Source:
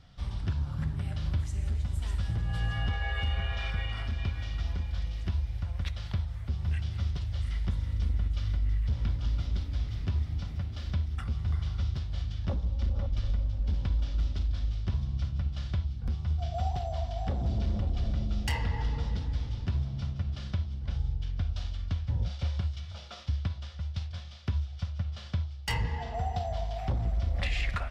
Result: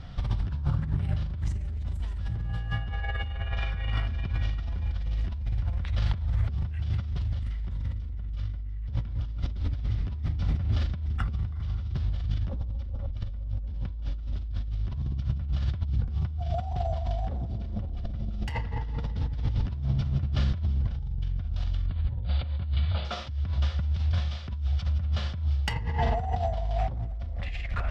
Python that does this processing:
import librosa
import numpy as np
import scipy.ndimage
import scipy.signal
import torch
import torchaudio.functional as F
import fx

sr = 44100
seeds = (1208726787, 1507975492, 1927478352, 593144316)

y = fx.steep_lowpass(x, sr, hz=4700.0, slope=96, at=(21.86, 23.05))
y = fx.lowpass(y, sr, hz=2600.0, slope=6)
y = fx.low_shelf(y, sr, hz=100.0, db=4.0)
y = fx.over_compress(y, sr, threshold_db=-35.0, ratio=-1.0)
y = F.gain(torch.from_numpy(y), 6.0).numpy()